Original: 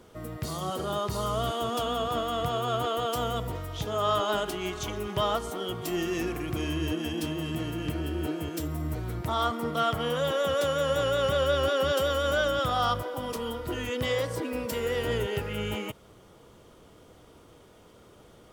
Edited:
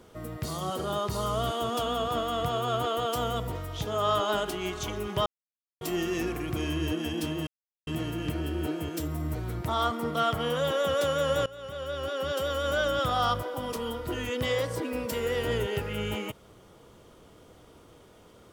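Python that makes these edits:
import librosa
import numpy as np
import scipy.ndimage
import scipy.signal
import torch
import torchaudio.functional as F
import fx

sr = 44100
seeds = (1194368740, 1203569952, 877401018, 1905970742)

y = fx.edit(x, sr, fx.silence(start_s=5.26, length_s=0.55),
    fx.insert_silence(at_s=7.47, length_s=0.4),
    fx.fade_in_from(start_s=11.06, length_s=1.56, floor_db=-21.5), tone=tone)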